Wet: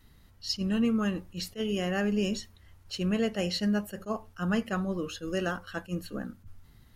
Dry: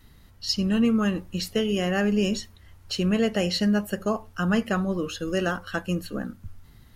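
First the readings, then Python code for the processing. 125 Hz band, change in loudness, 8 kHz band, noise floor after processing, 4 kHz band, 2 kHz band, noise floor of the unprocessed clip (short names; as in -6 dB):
-5.5 dB, -5.5 dB, -5.5 dB, -58 dBFS, -5.5 dB, -5.5 dB, -53 dBFS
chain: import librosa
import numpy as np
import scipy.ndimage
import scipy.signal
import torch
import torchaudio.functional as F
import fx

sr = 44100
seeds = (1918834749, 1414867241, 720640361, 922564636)

y = fx.attack_slew(x, sr, db_per_s=330.0)
y = y * 10.0 ** (-5.0 / 20.0)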